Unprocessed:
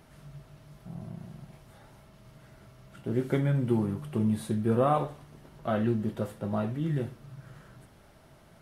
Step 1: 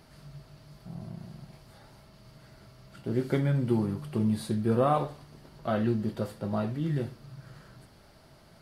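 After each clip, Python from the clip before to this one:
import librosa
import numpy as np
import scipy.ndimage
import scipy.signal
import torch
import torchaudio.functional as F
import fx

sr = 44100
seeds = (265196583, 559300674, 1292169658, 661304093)

y = fx.peak_eq(x, sr, hz=4600.0, db=11.0, octaves=0.31)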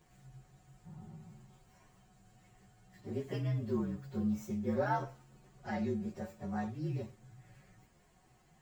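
y = fx.partial_stretch(x, sr, pct=116)
y = y + 0.36 * np.pad(y, (int(5.5 * sr / 1000.0), 0))[:len(y)]
y = y * librosa.db_to_amplitude(-7.0)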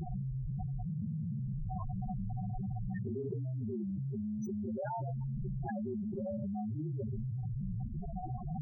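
y = fx.spec_topn(x, sr, count=4)
y = fx.env_flatten(y, sr, amount_pct=100)
y = y * librosa.db_to_amplitude(-6.5)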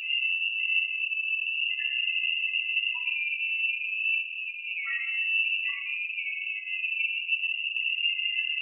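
y = fx.room_shoebox(x, sr, seeds[0], volume_m3=3600.0, walls='furnished', distance_m=4.5)
y = fx.freq_invert(y, sr, carrier_hz=2800)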